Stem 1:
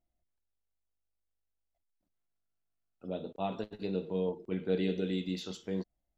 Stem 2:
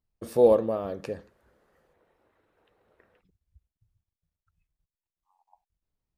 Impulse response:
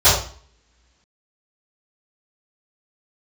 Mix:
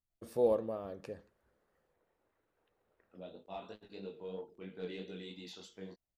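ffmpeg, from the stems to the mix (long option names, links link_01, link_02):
-filter_complex "[0:a]lowshelf=frequency=440:gain=-8.5,asoftclip=type=tanh:threshold=-24.5dB,flanger=delay=19.5:depth=4.1:speed=3,adelay=100,volume=-3.5dB[link_01];[1:a]volume=-10.5dB[link_02];[link_01][link_02]amix=inputs=2:normalize=0"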